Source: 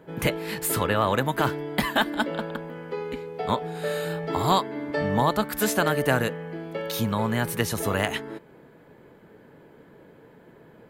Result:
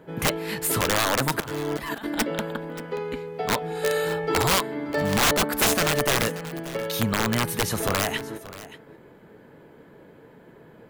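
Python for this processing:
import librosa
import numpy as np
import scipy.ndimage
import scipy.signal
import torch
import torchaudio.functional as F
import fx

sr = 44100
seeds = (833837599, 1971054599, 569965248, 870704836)

y = fx.over_compress(x, sr, threshold_db=-34.0, ratio=-1.0, at=(1.4, 2.15))
y = fx.comb(y, sr, ms=2.3, depth=0.74, at=(3.69, 4.42), fade=0.02)
y = fx.peak_eq(y, sr, hz=510.0, db=9.5, octaves=2.0, at=(5.21, 5.73), fade=0.02)
y = (np.mod(10.0 ** (15.5 / 20.0) * y + 1.0, 2.0) - 1.0) / 10.0 ** (15.5 / 20.0)
y = y + 10.0 ** (-16.5 / 20.0) * np.pad(y, (int(581 * sr / 1000.0), 0))[:len(y)]
y = y * librosa.db_to_amplitude(1.5)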